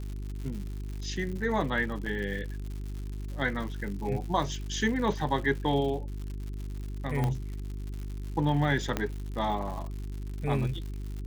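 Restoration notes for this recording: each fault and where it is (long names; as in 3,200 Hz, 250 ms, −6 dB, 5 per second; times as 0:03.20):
surface crackle 150 per second −37 dBFS
mains hum 50 Hz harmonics 8 −36 dBFS
0:02.06: drop-out 4.6 ms
0:07.24: click −17 dBFS
0:08.97: click −14 dBFS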